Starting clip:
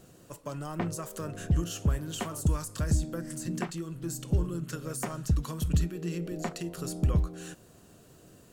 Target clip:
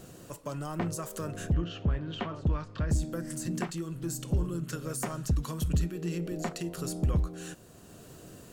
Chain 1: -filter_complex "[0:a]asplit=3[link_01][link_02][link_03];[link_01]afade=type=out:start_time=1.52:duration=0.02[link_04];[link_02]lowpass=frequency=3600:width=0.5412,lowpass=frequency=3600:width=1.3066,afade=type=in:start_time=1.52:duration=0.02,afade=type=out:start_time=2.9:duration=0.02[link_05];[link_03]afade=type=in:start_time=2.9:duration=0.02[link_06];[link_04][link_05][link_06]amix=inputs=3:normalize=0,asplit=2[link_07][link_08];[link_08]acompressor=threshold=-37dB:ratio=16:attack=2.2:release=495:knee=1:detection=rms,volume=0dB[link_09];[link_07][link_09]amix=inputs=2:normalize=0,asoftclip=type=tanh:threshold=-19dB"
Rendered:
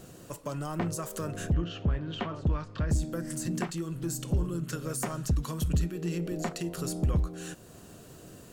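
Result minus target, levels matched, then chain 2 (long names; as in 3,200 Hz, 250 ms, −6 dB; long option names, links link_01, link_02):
downward compressor: peak gain reduction −8.5 dB
-filter_complex "[0:a]asplit=3[link_01][link_02][link_03];[link_01]afade=type=out:start_time=1.52:duration=0.02[link_04];[link_02]lowpass=frequency=3600:width=0.5412,lowpass=frequency=3600:width=1.3066,afade=type=in:start_time=1.52:duration=0.02,afade=type=out:start_time=2.9:duration=0.02[link_05];[link_03]afade=type=in:start_time=2.9:duration=0.02[link_06];[link_04][link_05][link_06]amix=inputs=3:normalize=0,asplit=2[link_07][link_08];[link_08]acompressor=threshold=-46dB:ratio=16:attack=2.2:release=495:knee=1:detection=rms,volume=0dB[link_09];[link_07][link_09]amix=inputs=2:normalize=0,asoftclip=type=tanh:threshold=-19dB"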